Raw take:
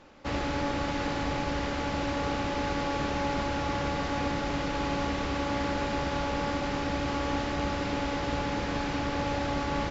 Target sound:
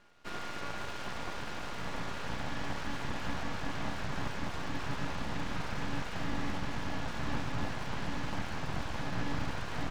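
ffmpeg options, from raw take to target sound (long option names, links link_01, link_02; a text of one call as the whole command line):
ffmpeg -i in.wav -af "aeval=exprs='val(0)*sin(2*PI*710*n/s)':channel_layout=same,asubboost=boost=11:cutoff=110,aeval=exprs='abs(val(0))':channel_layout=same,volume=-4.5dB" out.wav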